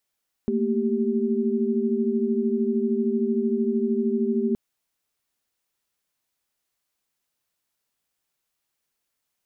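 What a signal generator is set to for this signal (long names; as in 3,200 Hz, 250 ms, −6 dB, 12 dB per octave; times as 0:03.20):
held notes A3/A#3/G4 sine, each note −25 dBFS 4.07 s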